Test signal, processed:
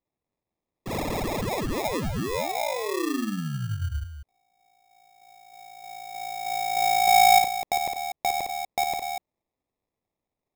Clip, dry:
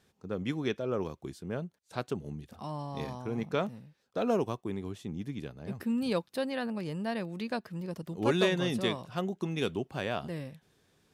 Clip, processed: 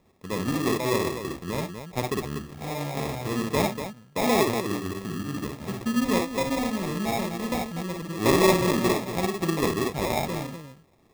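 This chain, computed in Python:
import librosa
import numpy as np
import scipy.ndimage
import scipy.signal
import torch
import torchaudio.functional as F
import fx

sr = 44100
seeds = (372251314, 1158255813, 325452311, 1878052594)

y = fx.echo_multitap(x, sr, ms=(55, 58, 89, 243), db=(-3.5, -5.5, -16.0, -8.0))
y = fx.sample_hold(y, sr, seeds[0], rate_hz=1500.0, jitter_pct=0)
y = F.gain(torch.from_numpy(y), 4.5).numpy()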